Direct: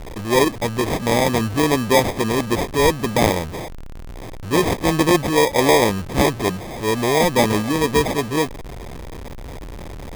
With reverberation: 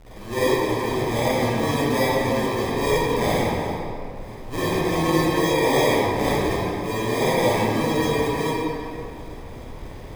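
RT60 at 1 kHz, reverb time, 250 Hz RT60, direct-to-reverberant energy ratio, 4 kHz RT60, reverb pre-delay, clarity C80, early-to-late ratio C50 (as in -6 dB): 2.5 s, 2.6 s, 2.6 s, -11.0 dB, 1.5 s, 39 ms, -4.0 dB, -8.0 dB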